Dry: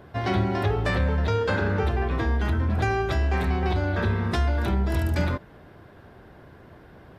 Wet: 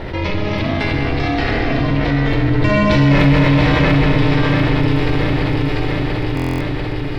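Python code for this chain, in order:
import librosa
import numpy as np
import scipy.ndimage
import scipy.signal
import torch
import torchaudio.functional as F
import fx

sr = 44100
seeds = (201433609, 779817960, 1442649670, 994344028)

p1 = fx.doppler_pass(x, sr, speed_mps=22, closest_m=2.7, pass_at_s=3.13)
p2 = p1 + fx.echo_feedback(p1, sr, ms=693, feedback_pct=41, wet_db=-7, dry=0)
p3 = fx.rev_schroeder(p2, sr, rt60_s=3.1, comb_ms=32, drr_db=-2.5)
p4 = p3 * np.sin(2.0 * np.pi * 210.0 * np.arange(len(p3)) / sr)
p5 = fx.tilt_eq(p4, sr, slope=-2.0)
p6 = np.clip(10.0 ** (22.5 / 20.0) * p5, -1.0, 1.0) / 10.0 ** (22.5 / 20.0)
p7 = p5 + (p6 * librosa.db_to_amplitude(-4.0))
p8 = fx.band_shelf(p7, sr, hz=3200.0, db=10.5, octaves=1.7)
p9 = fx.buffer_glitch(p8, sr, at_s=(6.35,), block=1024, repeats=10)
p10 = fx.env_flatten(p9, sr, amount_pct=70)
y = p10 * librosa.db_to_amplitude(4.5)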